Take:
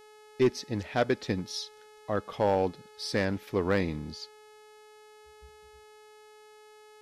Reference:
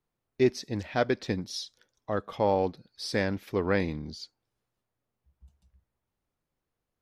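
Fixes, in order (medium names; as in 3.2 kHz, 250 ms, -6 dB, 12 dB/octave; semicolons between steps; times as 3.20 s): clip repair -16.5 dBFS; de-hum 426.1 Hz, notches 28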